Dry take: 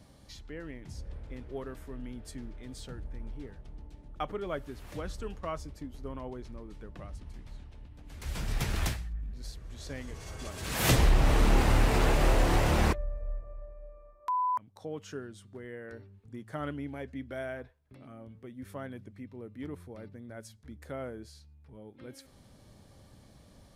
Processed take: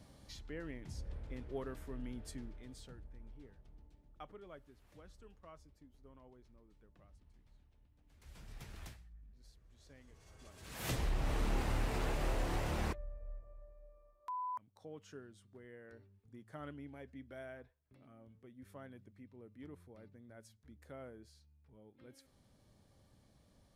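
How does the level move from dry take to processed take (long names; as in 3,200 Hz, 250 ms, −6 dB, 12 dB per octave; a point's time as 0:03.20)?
0:02.26 −3 dB
0:03.10 −13 dB
0:03.75 −13 dB
0:04.78 −20 dB
0:09.99 −20 dB
0:11.33 −11.5 dB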